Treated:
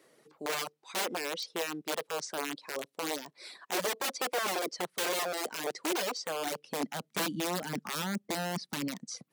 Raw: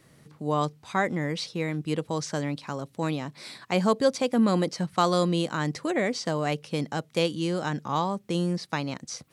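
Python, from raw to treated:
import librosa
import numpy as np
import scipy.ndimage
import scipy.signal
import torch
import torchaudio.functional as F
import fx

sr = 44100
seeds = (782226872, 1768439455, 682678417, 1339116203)

y = (np.mod(10.0 ** (22.5 / 20.0) * x + 1.0, 2.0) - 1.0) / 10.0 ** (22.5 / 20.0)
y = fx.filter_sweep_highpass(y, sr, from_hz=410.0, to_hz=200.0, start_s=6.21, end_s=7.2, q=1.8)
y = fx.dereverb_blind(y, sr, rt60_s=0.76)
y = F.gain(torch.from_numpy(y), -4.0).numpy()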